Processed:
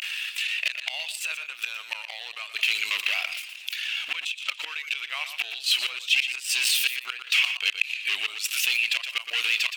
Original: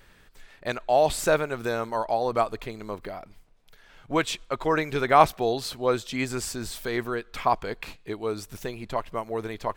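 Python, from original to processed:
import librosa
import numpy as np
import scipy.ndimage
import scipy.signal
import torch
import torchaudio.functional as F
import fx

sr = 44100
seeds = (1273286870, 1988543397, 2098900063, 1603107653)

p1 = fx.spec_quant(x, sr, step_db=15)
p2 = fx.vibrato(p1, sr, rate_hz=0.34, depth_cents=69.0)
p3 = fx.gate_flip(p2, sr, shuts_db=-20.0, range_db=-29)
p4 = fx.level_steps(p3, sr, step_db=12)
p5 = p3 + (p4 * 10.0 ** (2.0 / 20.0))
p6 = fx.leveller(p5, sr, passes=1)
p7 = np.clip(p6, -10.0 ** (-27.0 / 20.0), 10.0 ** (-27.0 / 20.0))
p8 = fx.highpass_res(p7, sr, hz=2700.0, q=6.9)
p9 = p8 + fx.echo_single(p8, sr, ms=120, db=-17.0, dry=0)
p10 = fx.env_flatten(p9, sr, amount_pct=50)
y = p10 * 10.0 ** (2.5 / 20.0)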